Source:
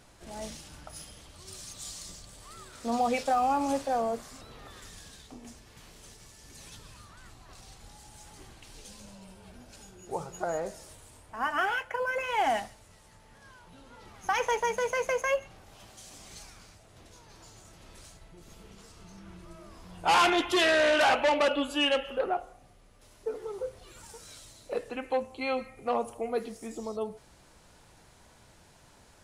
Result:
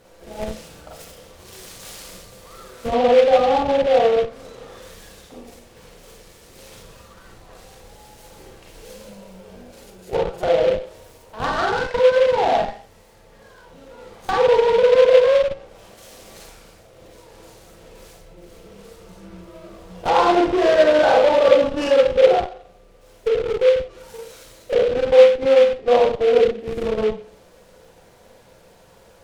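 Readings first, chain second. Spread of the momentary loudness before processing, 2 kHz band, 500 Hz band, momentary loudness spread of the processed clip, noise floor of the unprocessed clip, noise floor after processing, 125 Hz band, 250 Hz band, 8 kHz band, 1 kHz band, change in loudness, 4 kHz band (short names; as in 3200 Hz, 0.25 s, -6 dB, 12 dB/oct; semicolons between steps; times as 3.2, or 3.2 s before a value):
24 LU, +3.5 dB, +16.0 dB, 15 LU, -58 dBFS, -50 dBFS, +11.0 dB, +7.5 dB, n/a, +7.0 dB, +12.0 dB, +4.0 dB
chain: bell 500 Hz +13.5 dB 0.56 oct; Schroeder reverb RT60 0.41 s, combs from 33 ms, DRR -3 dB; in parallel at -9 dB: Schmitt trigger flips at -22 dBFS; on the sum: treble ducked by the level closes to 1300 Hz, closed at -15.5 dBFS; noise-modulated delay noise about 2200 Hz, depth 0.035 ms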